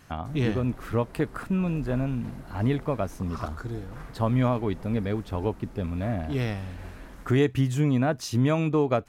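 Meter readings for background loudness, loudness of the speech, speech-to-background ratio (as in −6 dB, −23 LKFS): −46.5 LKFS, −27.5 LKFS, 19.0 dB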